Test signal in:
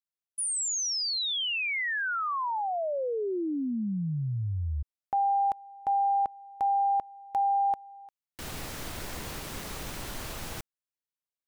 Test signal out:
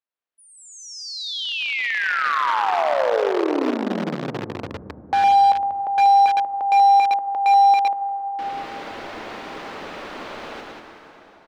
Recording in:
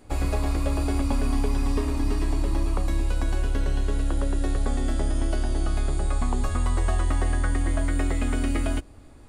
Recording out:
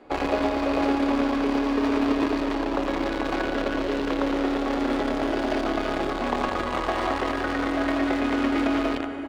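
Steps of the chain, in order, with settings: treble shelf 3 kHz -9.5 dB; on a send: loudspeakers at several distances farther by 38 m -6 dB, 65 m -5 dB; on the sum: plate-style reverb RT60 4 s, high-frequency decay 0.75×, pre-delay 120 ms, DRR 6 dB; in parallel at -8 dB: bit crusher 4-bit; on the sum: peak limiter -16.5 dBFS; three-band isolator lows -23 dB, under 250 Hz, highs -23 dB, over 4.9 kHz; trim +7 dB

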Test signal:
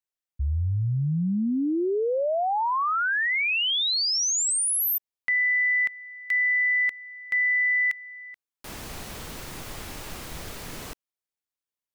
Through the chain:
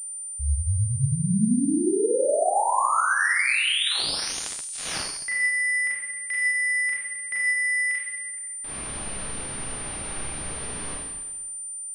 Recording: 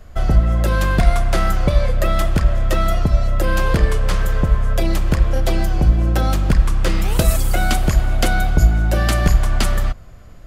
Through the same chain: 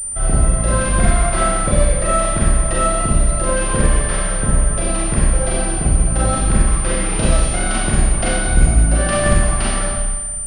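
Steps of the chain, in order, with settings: Schroeder reverb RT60 1.2 s, combs from 29 ms, DRR -6.5 dB; class-D stage that switches slowly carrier 9.1 kHz; trim -5 dB

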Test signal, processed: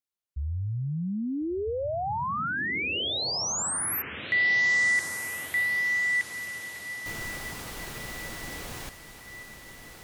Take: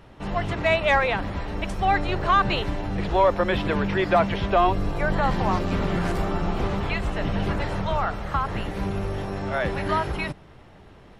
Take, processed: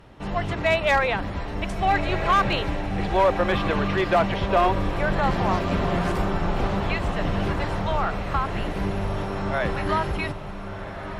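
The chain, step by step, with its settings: one-sided clip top -14.5 dBFS, bottom -12 dBFS; echo that smears into a reverb 1418 ms, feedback 53%, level -9.5 dB

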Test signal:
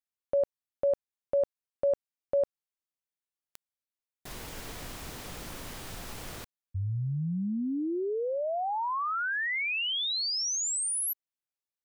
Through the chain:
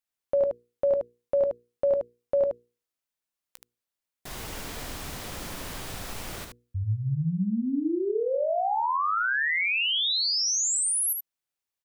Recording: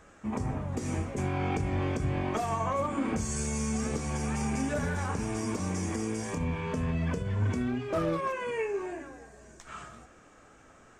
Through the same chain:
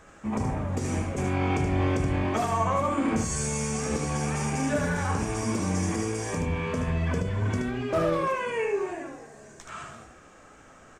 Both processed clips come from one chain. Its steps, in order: hum notches 60/120/180/240/300/360/420/480 Hz; early reflections 17 ms -16 dB, 75 ms -5 dB; trim +3.5 dB

